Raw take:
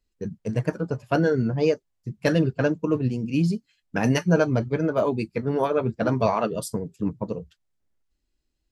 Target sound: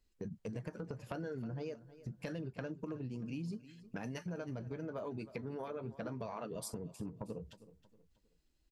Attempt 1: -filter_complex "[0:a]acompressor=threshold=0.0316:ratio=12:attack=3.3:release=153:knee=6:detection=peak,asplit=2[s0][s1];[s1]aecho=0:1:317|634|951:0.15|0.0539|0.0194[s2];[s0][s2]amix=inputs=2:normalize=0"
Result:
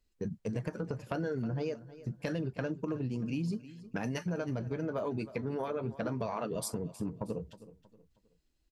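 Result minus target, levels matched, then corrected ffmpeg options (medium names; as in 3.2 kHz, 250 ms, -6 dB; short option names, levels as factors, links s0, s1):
compression: peak gain reduction -7.5 dB
-filter_complex "[0:a]acompressor=threshold=0.0126:ratio=12:attack=3.3:release=153:knee=6:detection=peak,asplit=2[s0][s1];[s1]aecho=0:1:317|634|951:0.15|0.0539|0.0194[s2];[s0][s2]amix=inputs=2:normalize=0"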